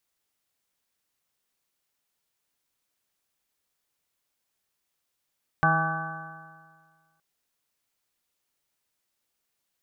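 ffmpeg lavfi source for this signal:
ffmpeg -f lavfi -i "aevalsrc='0.0668*pow(10,-3*t/1.74)*sin(2*PI*159.12*t)+0.0168*pow(10,-3*t/1.74)*sin(2*PI*318.95*t)+0.00841*pow(10,-3*t/1.74)*sin(2*PI*480.21*t)+0.0282*pow(10,-3*t/1.74)*sin(2*PI*643.59*t)+0.075*pow(10,-3*t/1.74)*sin(2*PI*809.77*t)+0.00794*pow(10,-3*t/1.74)*sin(2*PI*979.42*t)+0.075*pow(10,-3*t/1.74)*sin(2*PI*1153.18*t)+0.0106*pow(10,-3*t/1.74)*sin(2*PI*1331.66*t)+0.0794*pow(10,-3*t/1.74)*sin(2*PI*1515.44*t)+0.0126*pow(10,-3*t/1.74)*sin(2*PI*1705.09*t)':duration=1.57:sample_rate=44100" out.wav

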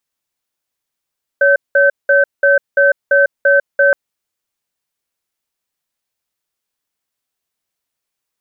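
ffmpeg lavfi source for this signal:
ffmpeg -f lavfi -i "aevalsrc='0.316*(sin(2*PI*562*t)+sin(2*PI*1540*t))*clip(min(mod(t,0.34),0.15-mod(t,0.34))/0.005,0,1)':duration=2.52:sample_rate=44100" out.wav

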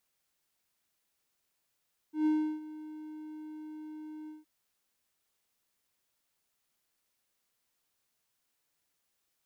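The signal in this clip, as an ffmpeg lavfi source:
ffmpeg -f lavfi -i "aevalsrc='0.0841*(1-4*abs(mod(308*t+0.25,1)-0.5))':duration=2.317:sample_rate=44100,afade=type=in:duration=0.129,afade=type=out:start_time=0.129:duration=0.339:silence=0.126,afade=type=out:start_time=2.15:duration=0.167" out.wav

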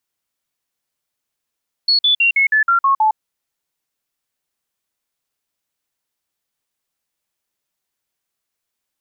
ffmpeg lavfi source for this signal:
ffmpeg -f lavfi -i "aevalsrc='0.299*clip(min(mod(t,0.16),0.11-mod(t,0.16))/0.005,0,1)*sin(2*PI*4370*pow(2,-floor(t/0.16)/3)*mod(t,0.16))':duration=1.28:sample_rate=44100" out.wav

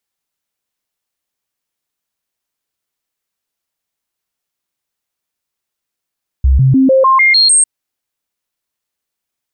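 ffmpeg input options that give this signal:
ffmpeg -f lavfi -i "aevalsrc='0.531*clip(min(mod(t,0.15),0.15-mod(t,0.15))/0.005,0,1)*sin(2*PI*66.2*pow(2,floor(t/0.15)/1)*mod(t,0.15))':duration=1.2:sample_rate=44100" out.wav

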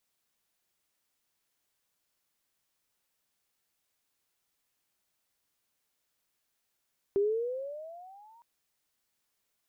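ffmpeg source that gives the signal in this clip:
ffmpeg -f lavfi -i "aevalsrc='pow(10,(-22.5-33*t/1.26)/20)*sin(2*PI*391*1.26/(15.5*log(2)/12)*(exp(15.5*log(2)/12*t/1.26)-1))':duration=1.26:sample_rate=44100" out.wav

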